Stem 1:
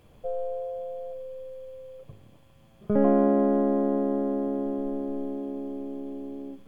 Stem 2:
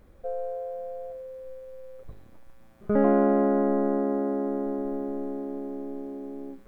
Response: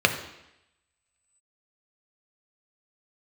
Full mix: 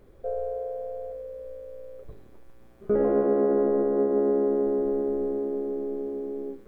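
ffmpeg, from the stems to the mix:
-filter_complex "[0:a]aeval=exprs='val(0)+0.00708*(sin(2*PI*60*n/s)+sin(2*PI*2*60*n/s)/2+sin(2*PI*3*60*n/s)/3+sin(2*PI*4*60*n/s)/4+sin(2*PI*5*60*n/s)/5)':c=same,aeval=exprs='val(0)*sin(2*PI*60*n/s)':c=same,volume=0.188,asplit=2[s0][s1];[s1]volume=0.15[s2];[1:a]alimiter=limit=0.1:level=0:latency=1:release=25,volume=0.841[s3];[2:a]atrim=start_sample=2205[s4];[s2][s4]afir=irnorm=-1:irlink=0[s5];[s0][s3][s5]amix=inputs=3:normalize=0,equalizer=f=410:t=o:w=0.42:g=10.5"

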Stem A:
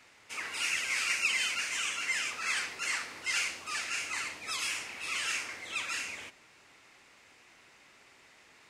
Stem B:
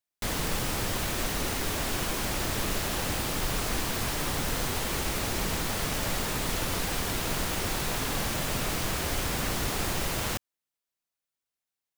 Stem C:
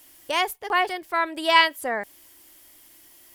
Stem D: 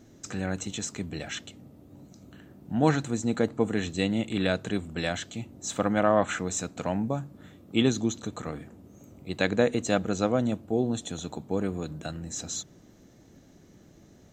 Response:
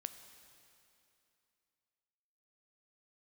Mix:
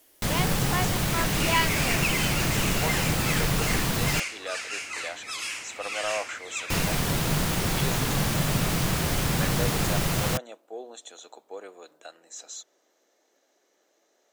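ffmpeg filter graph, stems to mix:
-filter_complex "[0:a]adelay=800,volume=1.12[s0];[1:a]equalizer=f=150:w=1.8:g=10.5,volume=1.33,asplit=3[s1][s2][s3];[s1]atrim=end=4.2,asetpts=PTS-STARTPTS,afade=t=out:st=4.196:d=0.004:c=hsin[s4];[s2]atrim=start=4.2:end=6.7,asetpts=PTS-STARTPTS,volume=0[s5];[s3]atrim=start=6.7,asetpts=PTS-STARTPTS,afade=t=in:d=0.004:c=hsin[s6];[s4][s5][s6]concat=n=3:v=0:a=1[s7];[2:a]volume=0.398[s8];[3:a]highpass=f=460:w=0.5412,highpass=f=460:w=1.3066,asoftclip=type=tanh:threshold=0.158,volume=0.531[s9];[s0][s7][s8][s9]amix=inputs=4:normalize=0"

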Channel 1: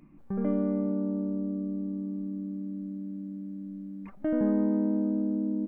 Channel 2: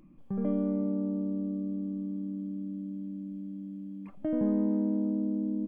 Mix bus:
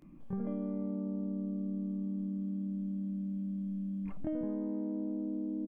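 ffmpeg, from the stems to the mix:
-filter_complex "[0:a]asubboost=boost=10:cutoff=220,acompressor=threshold=0.0398:ratio=6,volume=0.422[s0];[1:a]adelay=22,volume=1.12[s1];[s0][s1]amix=inputs=2:normalize=0,acompressor=threshold=0.0224:ratio=6"

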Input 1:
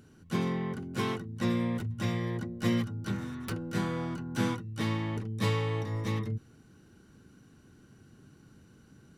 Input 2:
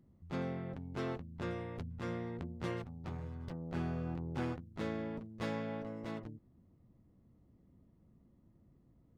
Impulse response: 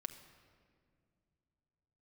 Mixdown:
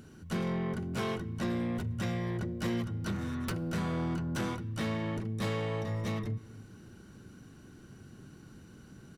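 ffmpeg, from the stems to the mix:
-filter_complex "[0:a]acompressor=threshold=0.0178:ratio=2.5,volume=1.19,asplit=2[s0][s1];[s1]volume=0.631[s2];[1:a]aecho=1:1:3.1:0.65,adelay=0.3,volume=1[s3];[2:a]atrim=start_sample=2205[s4];[s2][s4]afir=irnorm=-1:irlink=0[s5];[s0][s3][s5]amix=inputs=3:normalize=0,asoftclip=type=tanh:threshold=0.0501"

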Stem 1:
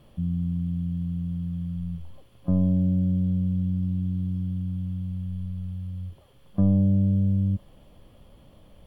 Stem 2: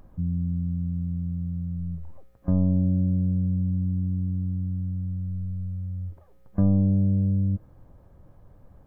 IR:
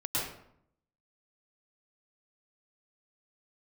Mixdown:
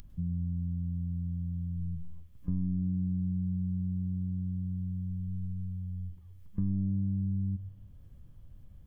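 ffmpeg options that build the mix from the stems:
-filter_complex "[0:a]lowpass=f=1100:p=1,volume=0.376[s0];[1:a]equalizer=f=840:w=0.63:g=-11,acompressor=mode=upward:threshold=0.00891:ratio=2.5,volume=0.708,asplit=2[s1][s2];[s2]volume=0.1[s3];[2:a]atrim=start_sample=2205[s4];[s3][s4]afir=irnorm=-1:irlink=0[s5];[s0][s1][s5]amix=inputs=3:normalize=0,equalizer=f=580:w=0.48:g=-12,acompressor=threshold=0.0282:ratio=2"

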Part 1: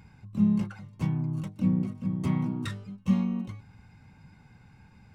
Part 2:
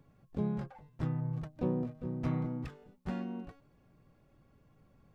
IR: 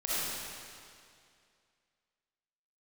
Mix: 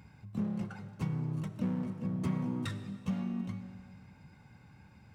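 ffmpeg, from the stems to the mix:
-filter_complex "[0:a]acompressor=threshold=0.0398:ratio=6,volume=0.708,asplit=2[s0][s1];[s1]volume=0.112[s2];[1:a]asoftclip=type=hard:threshold=0.0168,highpass=240,volume=0.501,asplit=2[s3][s4];[s4]volume=0.251[s5];[2:a]atrim=start_sample=2205[s6];[s2][s5]amix=inputs=2:normalize=0[s7];[s7][s6]afir=irnorm=-1:irlink=0[s8];[s0][s3][s8]amix=inputs=3:normalize=0,highpass=51"

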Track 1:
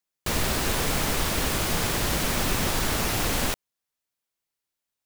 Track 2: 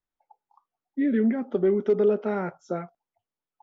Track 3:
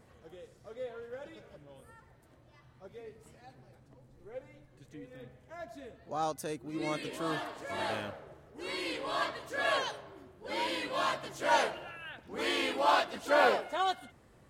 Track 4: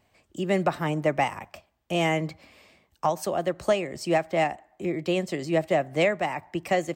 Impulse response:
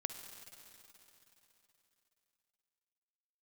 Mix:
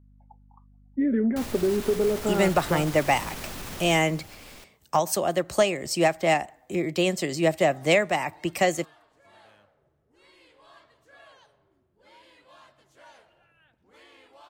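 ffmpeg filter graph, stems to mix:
-filter_complex "[0:a]alimiter=limit=0.075:level=0:latency=1:release=71,adelay=1100,volume=0.562,afade=t=out:st=3.78:d=0.27:silence=0.266073[s0];[1:a]lowpass=1800,acompressor=threshold=0.0794:ratio=6,aeval=exprs='val(0)+0.00158*(sin(2*PI*50*n/s)+sin(2*PI*2*50*n/s)/2+sin(2*PI*3*50*n/s)/3+sin(2*PI*4*50*n/s)/4+sin(2*PI*5*50*n/s)/5)':c=same,volume=1.26[s1];[2:a]lowshelf=f=280:g=9,acrossover=split=100|520|1800[s2][s3][s4][s5];[s2]acompressor=threshold=0.00126:ratio=4[s6];[s3]acompressor=threshold=0.00355:ratio=4[s7];[s4]acompressor=threshold=0.02:ratio=4[s8];[s5]acompressor=threshold=0.0112:ratio=4[s9];[s6][s7][s8][s9]amix=inputs=4:normalize=0,adelay=1550,volume=0.119[s10];[3:a]highshelf=f=3900:g=10,adelay=1900,volume=1.19[s11];[s0][s1][s10][s11]amix=inputs=4:normalize=0"

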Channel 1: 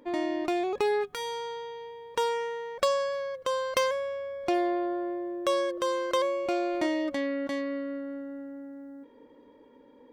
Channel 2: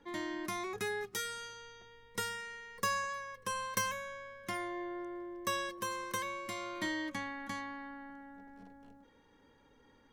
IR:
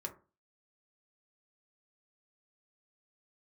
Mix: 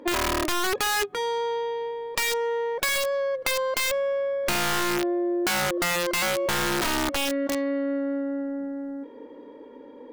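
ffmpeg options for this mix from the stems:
-filter_complex "[0:a]asplit=2[s0][s1];[s1]highpass=f=720:p=1,volume=7.08,asoftclip=type=tanh:threshold=0.316[s2];[s0][s2]amix=inputs=2:normalize=0,lowpass=f=4300:p=1,volume=0.501,volume=0.631[s3];[1:a]lowpass=4300,aemphasis=mode=reproduction:type=75kf,volume=0.473[s4];[s3][s4]amix=inputs=2:normalize=0,equalizer=f=320:w=0.61:g=11,aeval=exprs='(mod(5.31*val(0)+1,2)-1)/5.31':c=same,acompressor=threshold=0.0708:ratio=6"

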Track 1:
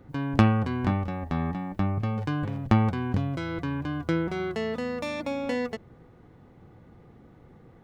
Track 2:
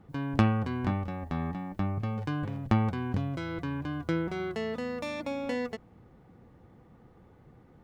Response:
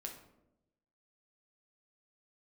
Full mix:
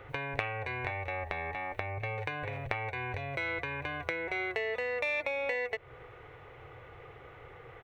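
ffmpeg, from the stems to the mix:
-filter_complex "[0:a]acompressor=threshold=0.0251:ratio=6,volume=1[s0];[1:a]highpass=690,adelay=0.5,volume=0.531[s1];[s0][s1]amix=inputs=2:normalize=0,firequalizer=gain_entry='entry(130,0);entry(190,-22);entry(420,7);entry(870,6);entry(1400,14);entry(4400,-23);entry(8100,-26)':delay=0.05:min_phase=1,aexciter=amount=10:drive=6.2:freq=2400,acompressor=threshold=0.0178:ratio=2"

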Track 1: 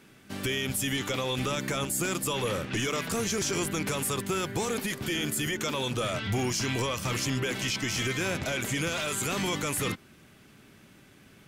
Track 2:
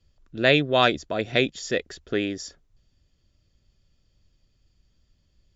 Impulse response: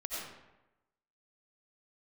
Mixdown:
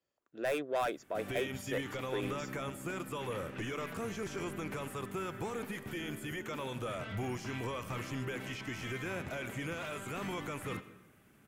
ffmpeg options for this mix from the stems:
-filter_complex "[0:a]acrossover=split=4700[s0][s1];[s1]acompressor=threshold=0.00501:ratio=4:attack=1:release=60[s2];[s0][s2]amix=inputs=2:normalize=0,tiltshelf=f=970:g=-3,adelay=850,volume=0.447,asplit=2[s3][s4];[s4]volume=0.211[s5];[1:a]highpass=450,asoftclip=type=tanh:threshold=0.0891,volume=0.562[s6];[2:a]atrim=start_sample=2205[s7];[s5][s7]afir=irnorm=-1:irlink=0[s8];[s3][s6][s8]amix=inputs=3:normalize=0,equalizer=f=4400:w=0.73:g=-13.5"

